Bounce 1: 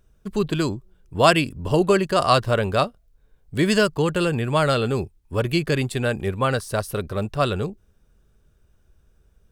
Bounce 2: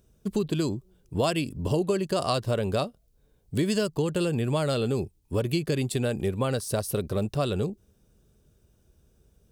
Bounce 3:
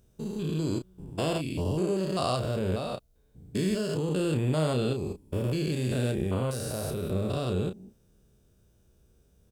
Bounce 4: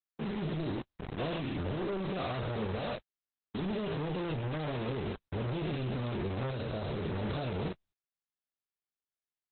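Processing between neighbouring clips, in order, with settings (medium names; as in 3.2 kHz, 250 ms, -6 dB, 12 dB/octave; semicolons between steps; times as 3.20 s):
high-pass 120 Hz 6 dB/octave; peaking EQ 1.5 kHz -10.5 dB 2 oct; compression 4:1, threshold -28 dBFS, peak gain reduction 11.5 dB; trim +4.5 dB
spectrogram pixelated in time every 200 ms; doubling 32 ms -7.5 dB
companded quantiser 2-bit; trim -7 dB; Opus 8 kbps 48 kHz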